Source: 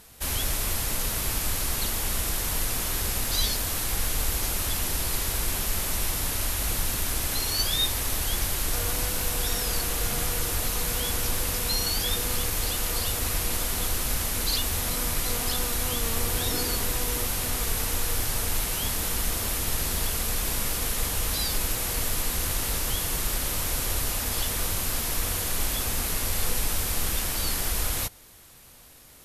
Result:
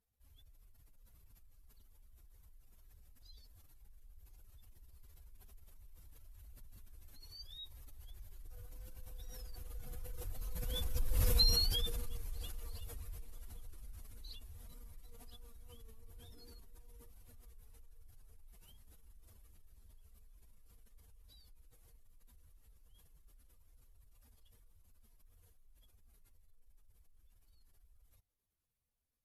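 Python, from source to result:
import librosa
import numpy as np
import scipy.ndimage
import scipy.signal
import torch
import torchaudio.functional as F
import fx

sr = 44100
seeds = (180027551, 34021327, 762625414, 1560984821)

y = fx.spec_expand(x, sr, power=1.9)
y = fx.doppler_pass(y, sr, speed_mps=9, closest_m=2.0, pass_at_s=11.32)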